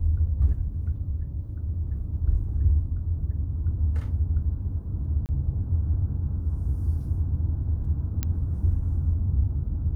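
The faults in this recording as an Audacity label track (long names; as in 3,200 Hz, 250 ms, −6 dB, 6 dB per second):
5.260000	5.290000	drop-out 29 ms
8.230000	8.230000	click −13 dBFS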